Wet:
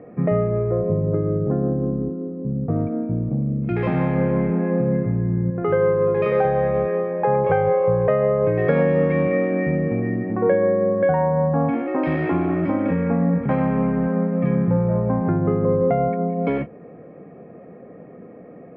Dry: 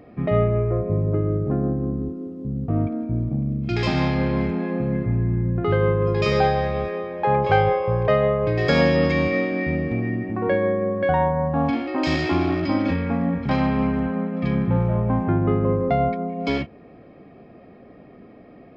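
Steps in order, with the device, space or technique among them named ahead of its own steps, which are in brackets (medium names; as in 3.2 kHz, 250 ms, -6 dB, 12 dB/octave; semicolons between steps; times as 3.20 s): 5.50–6.45 s: bass shelf 220 Hz -10.5 dB; bass amplifier (compression 4:1, threshold -20 dBFS, peak gain reduction 7 dB; cabinet simulation 72–2100 Hz, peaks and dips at 79 Hz -8 dB, 170 Hz +7 dB, 490 Hz +9 dB); trim +1.5 dB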